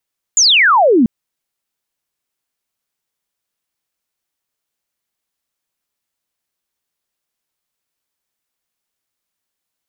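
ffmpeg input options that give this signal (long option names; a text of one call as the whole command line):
ffmpeg -f lavfi -i "aevalsrc='0.447*clip(t/0.002,0,1)*clip((0.69-t)/0.002,0,1)*sin(2*PI*7300*0.69/log(210/7300)*(exp(log(210/7300)*t/0.69)-1))':duration=0.69:sample_rate=44100" out.wav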